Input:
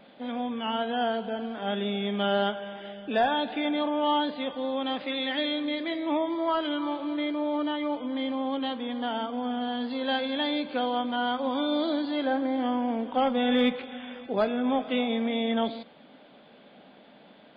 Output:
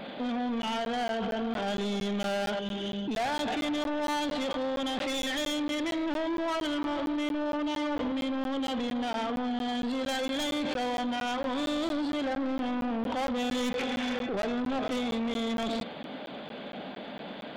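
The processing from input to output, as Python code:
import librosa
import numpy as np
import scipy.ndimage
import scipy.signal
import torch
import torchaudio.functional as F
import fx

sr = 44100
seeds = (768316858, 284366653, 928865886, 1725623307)

p1 = fx.tracing_dist(x, sr, depth_ms=0.074)
p2 = fx.over_compress(p1, sr, threshold_db=-39.0, ratio=-1.0)
p3 = p1 + (p2 * librosa.db_to_amplitude(0.0))
p4 = fx.band_shelf(p3, sr, hz=1100.0, db=-12.5, octaves=2.4, at=(2.59, 3.17))
p5 = fx.room_flutter(p4, sr, wall_m=11.7, rt60_s=0.65, at=(7.68, 8.12))
p6 = 10.0 ** (-29.0 / 20.0) * np.tanh(p5 / 10.0 ** (-29.0 / 20.0))
p7 = fx.buffer_crackle(p6, sr, first_s=0.62, period_s=0.23, block=512, kind='zero')
y = p7 * librosa.db_to_amplitude(1.5)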